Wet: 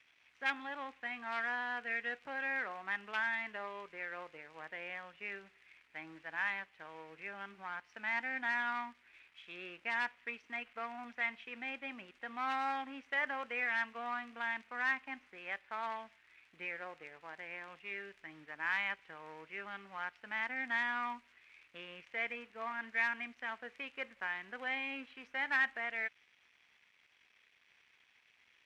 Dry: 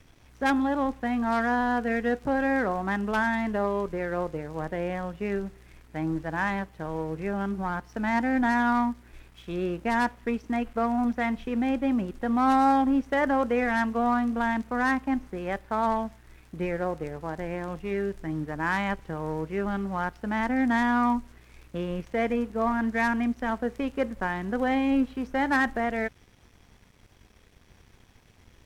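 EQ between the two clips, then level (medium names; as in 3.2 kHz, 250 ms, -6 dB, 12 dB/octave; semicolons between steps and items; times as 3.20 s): band-pass filter 2.4 kHz, Q 2.2; 0.0 dB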